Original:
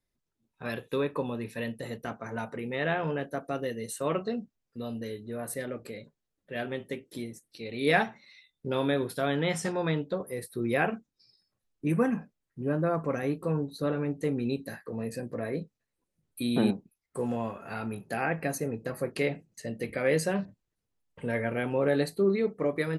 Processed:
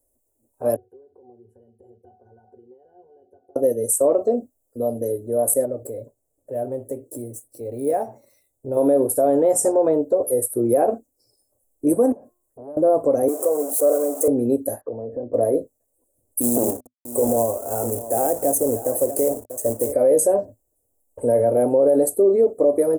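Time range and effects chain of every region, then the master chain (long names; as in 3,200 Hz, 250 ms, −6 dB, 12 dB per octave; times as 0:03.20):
0:00.76–0:03.56: downward compressor 20 to 1, threshold −42 dBFS + resonances in every octave F#, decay 0.18 s
0:05.65–0:08.77: running median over 3 samples + parametric band 130 Hz +11 dB 0.54 octaves + downward compressor 1.5 to 1, threshold −48 dBFS
0:12.12–0:12.77: hum removal 355.5 Hz, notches 11 + downward compressor, threshold −44 dBFS + saturating transformer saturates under 890 Hz
0:13.28–0:14.28: converter with a step at zero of −32.5 dBFS + high-pass filter 510 Hz + notch comb filter 890 Hz
0:14.81–0:15.34: inverse Chebyshev low-pass filter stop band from 3,900 Hz, stop band 50 dB + downward compressor 4 to 1, threshold −38 dBFS
0:16.41–0:19.93: single-tap delay 641 ms −16 dB + log-companded quantiser 4 bits
whole clip: drawn EQ curve 110 Hz 0 dB, 180 Hz −21 dB, 250 Hz +3 dB, 390 Hz +4 dB, 600 Hz +12 dB, 1,300 Hz −14 dB, 2,000 Hz −23 dB, 3,700 Hz −29 dB, 7,800 Hz +12 dB, 12,000 Hz +14 dB; brickwall limiter −17 dBFS; level +8 dB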